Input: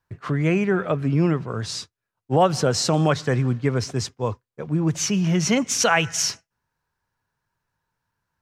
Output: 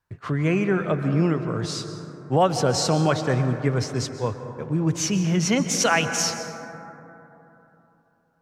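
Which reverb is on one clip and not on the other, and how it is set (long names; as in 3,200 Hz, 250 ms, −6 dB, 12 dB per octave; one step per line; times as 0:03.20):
dense smooth reverb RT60 3.4 s, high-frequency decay 0.25×, pre-delay 115 ms, DRR 8 dB
level −1.5 dB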